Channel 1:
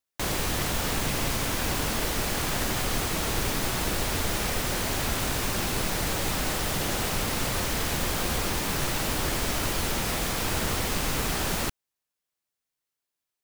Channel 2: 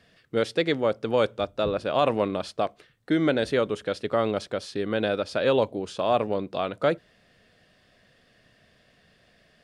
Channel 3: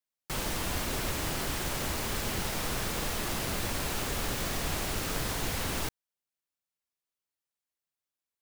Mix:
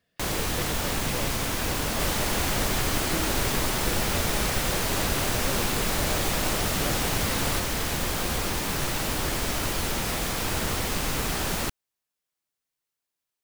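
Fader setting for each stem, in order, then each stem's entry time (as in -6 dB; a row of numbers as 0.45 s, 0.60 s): 0.0 dB, -15.5 dB, +2.5 dB; 0.00 s, 0.00 s, 1.70 s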